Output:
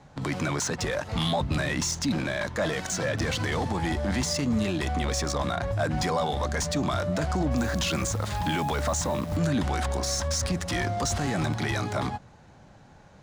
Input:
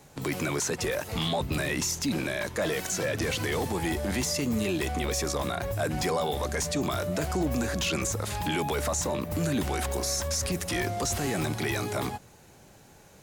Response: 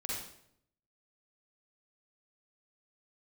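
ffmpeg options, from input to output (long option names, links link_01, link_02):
-filter_complex "[0:a]adynamicsmooth=sensitivity=6.5:basefreq=3700,equalizer=frequency=400:width_type=o:width=0.67:gain=-8,equalizer=frequency=2500:width_type=o:width=0.67:gain=-5,equalizer=frequency=16000:width_type=o:width=0.67:gain=-7,asettb=1/sr,asplit=3[link_01][link_02][link_03];[link_01]atrim=end=7.574[link_04];[link_02]atrim=start=7.57:end=9.37,asetpts=PTS-STARTPTS,afade=type=in:duration=0.004:curve=qsin,afade=type=out:start_time=1.796:duration=0.004:curve=qsin,acrusher=bits=9:dc=4:mix=0:aa=0.000001[link_05];[link_03]atrim=start=9.366[link_06];[link_04][link_05]acrossfade=duration=0.004:curve1=hsin:curve2=qsin[link_07];[link_07][link_06]acrossfade=duration=0.004:curve1=qsin:curve2=hsin,volume=4dB"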